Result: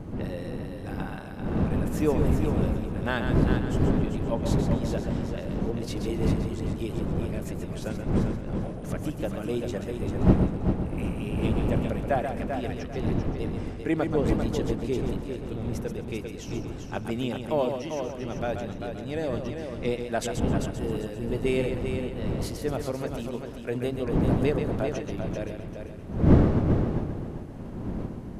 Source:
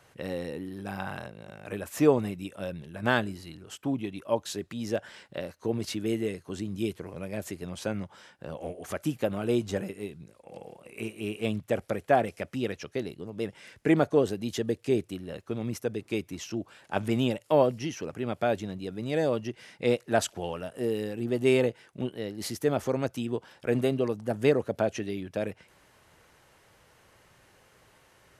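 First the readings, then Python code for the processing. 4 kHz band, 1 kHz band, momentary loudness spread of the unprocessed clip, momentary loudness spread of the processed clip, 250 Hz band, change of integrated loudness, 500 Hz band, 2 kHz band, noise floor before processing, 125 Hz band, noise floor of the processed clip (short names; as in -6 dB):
-2.0 dB, -0.5 dB, 14 LU, 10 LU, +4.0 dB, +2.0 dB, -1.0 dB, -2.0 dB, -62 dBFS, +9.0 dB, -38 dBFS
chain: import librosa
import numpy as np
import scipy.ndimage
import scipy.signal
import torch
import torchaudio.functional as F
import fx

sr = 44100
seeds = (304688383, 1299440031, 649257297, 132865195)

y = fx.dmg_wind(x, sr, seeds[0], corner_hz=240.0, level_db=-26.0)
y = fx.echo_heads(y, sr, ms=131, heads='first and third', feedback_pct=42, wet_db=-7)
y = F.gain(torch.from_numpy(y), -4.0).numpy()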